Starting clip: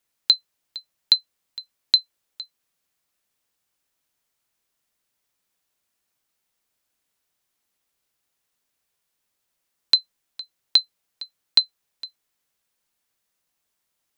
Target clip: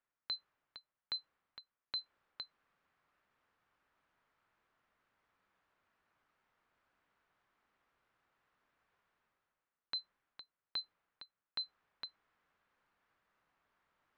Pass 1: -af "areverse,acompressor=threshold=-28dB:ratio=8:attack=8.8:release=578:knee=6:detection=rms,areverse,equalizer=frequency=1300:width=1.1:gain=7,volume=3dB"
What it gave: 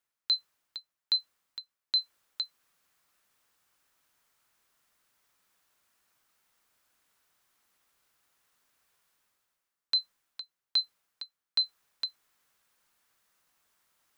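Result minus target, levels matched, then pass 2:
2,000 Hz band −10.0 dB
-af "areverse,acompressor=threshold=-28dB:ratio=8:attack=8.8:release=578:knee=6:detection=rms,areverse,lowpass=2000,equalizer=frequency=1300:width=1.1:gain=7,volume=3dB"

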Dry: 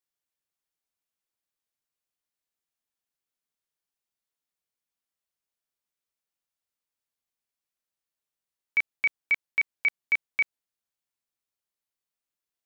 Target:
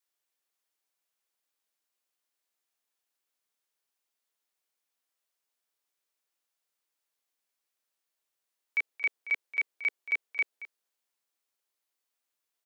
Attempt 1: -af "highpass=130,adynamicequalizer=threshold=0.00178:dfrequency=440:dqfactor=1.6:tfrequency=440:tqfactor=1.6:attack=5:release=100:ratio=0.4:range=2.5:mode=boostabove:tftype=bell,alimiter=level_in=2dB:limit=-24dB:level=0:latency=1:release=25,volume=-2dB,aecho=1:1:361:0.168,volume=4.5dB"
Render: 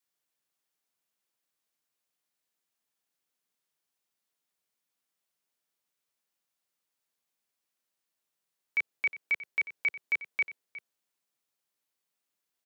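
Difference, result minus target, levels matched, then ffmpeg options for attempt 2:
echo 135 ms late; 250 Hz band +4.5 dB
-af "highpass=330,adynamicequalizer=threshold=0.00178:dfrequency=440:dqfactor=1.6:tfrequency=440:tqfactor=1.6:attack=5:release=100:ratio=0.4:range=2.5:mode=boostabove:tftype=bell,alimiter=level_in=2dB:limit=-24dB:level=0:latency=1:release=25,volume=-2dB,aecho=1:1:226:0.168,volume=4.5dB"

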